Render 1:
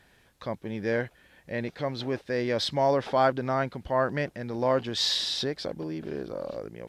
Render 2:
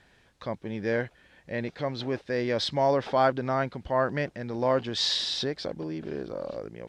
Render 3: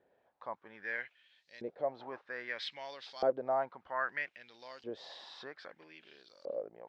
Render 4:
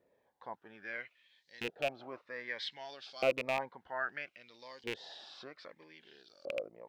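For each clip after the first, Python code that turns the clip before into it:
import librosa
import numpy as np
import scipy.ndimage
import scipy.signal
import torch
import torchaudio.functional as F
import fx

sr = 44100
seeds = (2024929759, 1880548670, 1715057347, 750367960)

y1 = scipy.signal.sosfilt(scipy.signal.butter(2, 7700.0, 'lowpass', fs=sr, output='sos'), x)
y2 = fx.filter_lfo_bandpass(y1, sr, shape='saw_up', hz=0.62, low_hz=450.0, high_hz=5500.0, q=3.0)
y3 = fx.rattle_buzz(y2, sr, strikes_db=-46.0, level_db=-23.0)
y3 = fx.notch_cascade(y3, sr, direction='falling', hz=0.89)
y3 = y3 * librosa.db_to_amplitude(1.0)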